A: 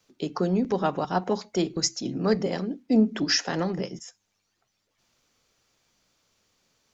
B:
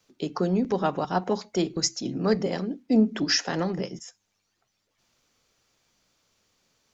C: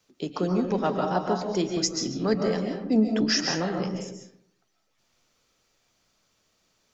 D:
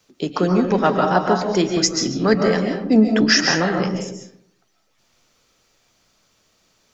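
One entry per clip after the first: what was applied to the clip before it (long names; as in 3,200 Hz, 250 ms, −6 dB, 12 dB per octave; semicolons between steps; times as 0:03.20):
no processing that can be heard
convolution reverb RT60 0.70 s, pre-delay 100 ms, DRR 2.5 dB; level −1.5 dB
dynamic equaliser 1,700 Hz, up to +6 dB, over −45 dBFS, Q 1.3; level +7.5 dB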